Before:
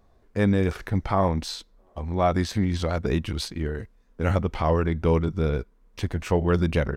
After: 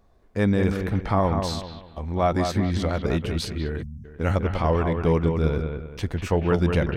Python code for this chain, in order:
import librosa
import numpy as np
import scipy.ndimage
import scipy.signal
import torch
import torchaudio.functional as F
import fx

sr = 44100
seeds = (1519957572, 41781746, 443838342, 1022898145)

y = fx.echo_bbd(x, sr, ms=195, stages=4096, feedback_pct=35, wet_db=-6)
y = fx.spec_erase(y, sr, start_s=3.82, length_s=0.23, low_hz=270.0, high_hz=5100.0)